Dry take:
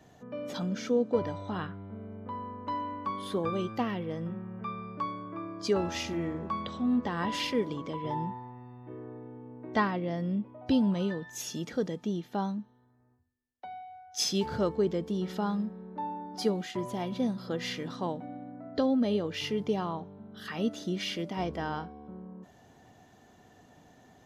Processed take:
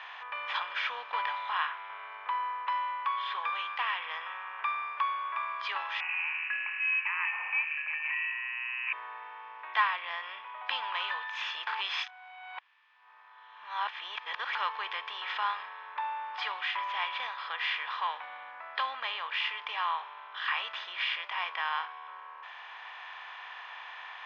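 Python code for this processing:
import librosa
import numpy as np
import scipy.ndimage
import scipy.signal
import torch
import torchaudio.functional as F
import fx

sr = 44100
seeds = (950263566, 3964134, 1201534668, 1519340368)

y = fx.freq_invert(x, sr, carrier_hz=2800, at=(6.0, 8.93))
y = fx.edit(y, sr, fx.reverse_span(start_s=11.67, length_s=2.88), tone=tone)
y = fx.bin_compress(y, sr, power=0.6)
y = scipy.signal.sosfilt(scipy.signal.ellip(3, 1.0, 70, [970.0, 3400.0], 'bandpass', fs=sr, output='sos'), y)
y = fx.rider(y, sr, range_db=4, speed_s=0.5)
y = y * 10.0 ** (1.0 / 20.0)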